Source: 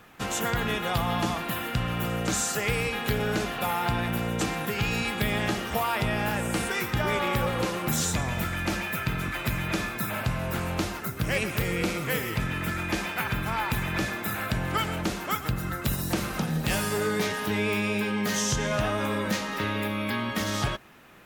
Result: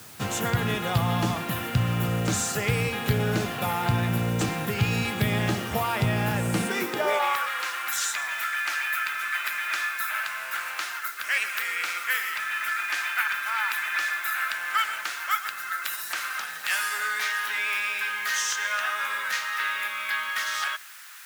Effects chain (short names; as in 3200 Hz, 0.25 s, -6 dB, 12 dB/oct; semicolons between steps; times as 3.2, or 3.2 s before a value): added noise white -47 dBFS; high-pass sweep 100 Hz -> 1500 Hz, 6.46–7.47